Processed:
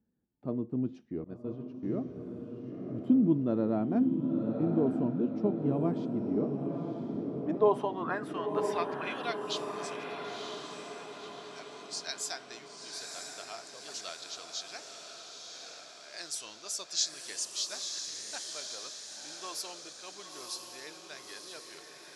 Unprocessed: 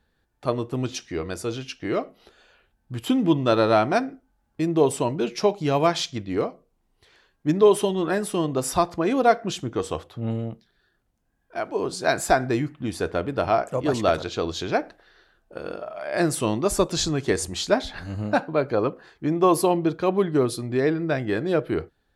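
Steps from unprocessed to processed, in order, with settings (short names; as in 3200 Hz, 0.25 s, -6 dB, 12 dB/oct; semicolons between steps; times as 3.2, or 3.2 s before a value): band-pass sweep 220 Hz -> 5600 Hz, 6.31–9.89; diffused feedback echo 0.987 s, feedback 55%, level -4.5 dB; 1.24–1.83 expander -32 dBFS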